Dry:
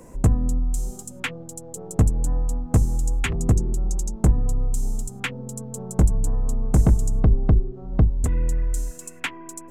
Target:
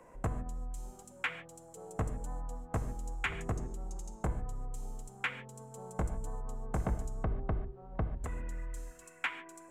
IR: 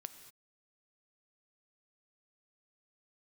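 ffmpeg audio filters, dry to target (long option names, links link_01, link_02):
-filter_complex "[0:a]acrossover=split=570 2800:gain=0.2 1 0.178[link_01][link_02][link_03];[link_01][link_02][link_03]amix=inputs=3:normalize=0[link_04];[1:a]atrim=start_sample=2205,asetrate=70560,aresample=44100[link_05];[link_04][link_05]afir=irnorm=-1:irlink=0,volume=5dB"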